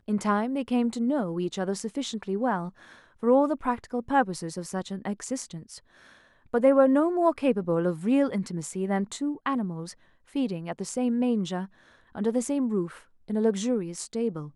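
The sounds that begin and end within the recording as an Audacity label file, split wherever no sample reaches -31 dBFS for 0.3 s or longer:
3.230000	5.740000	sound
6.540000	9.900000	sound
10.360000	11.650000	sound
12.150000	12.860000	sound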